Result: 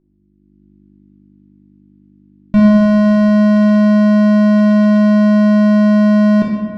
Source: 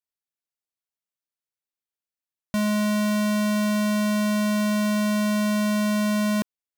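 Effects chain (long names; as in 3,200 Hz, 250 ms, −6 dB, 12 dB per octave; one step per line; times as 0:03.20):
soft clipping −27 dBFS, distortion −70 dB
low-pass filter 3,300 Hz 12 dB per octave
low-shelf EQ 490 Hz +11.5 dB
hum with harmonics 50 Hz, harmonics 7, −61 dBFS 0 dB per octave
automatic gain control gain up to 10.5 dB
convolution reverb RT60 2.0 s, pre-delay 3 ms, DRR −1.5 dB
level −3 dB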